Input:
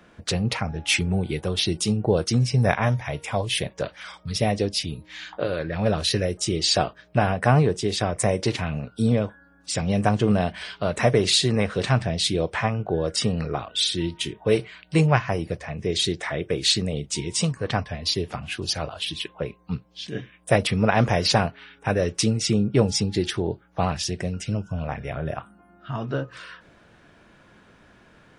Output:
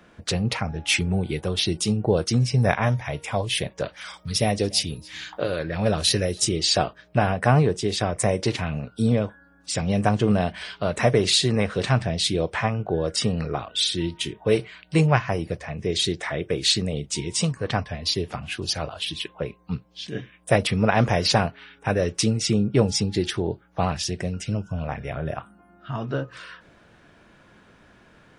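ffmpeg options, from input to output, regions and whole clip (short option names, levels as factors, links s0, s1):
-filter_complex "[0:a]asettb=1/sr,asplit=3[s0][s1][s2];[s0]atrim=end=3.964[s3];[s1]atrim=start=3.96:end=6.49,asetpts=PTS-STARTPTS,afade=t=in:d=0.004:c=qsin,afade=t=out:st=2.526:d=0.004:c=qsin,highshelf=f=6200:g=9.5,aecho=1:1:286:0.0631,atrim=end_sample=111573[s4];[s2]atrim=start=6.486[s5];[s3][s4]acrossfade=d=0.004:c1=hsin:c2=qsin[s6];[s6][s5]acrossfade=d=0.004:c1=qsin:c2=hsin"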